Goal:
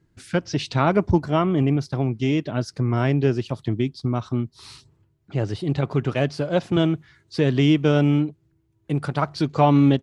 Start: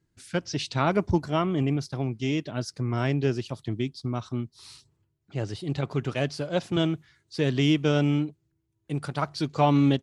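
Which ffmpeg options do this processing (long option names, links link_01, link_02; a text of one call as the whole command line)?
ffmpeg -i in.wav -filter_complex "[0:a]highshelf=frequency=3500:gain=-9.5,asplit=2[link_01][link_02];[link_02]acompressor=threshold=-35dB:ratio=6,volume=0.5dB[link_03];[link_01][link_03]amix=inputs=2:normalize=0,volume=3.5dB" out.wav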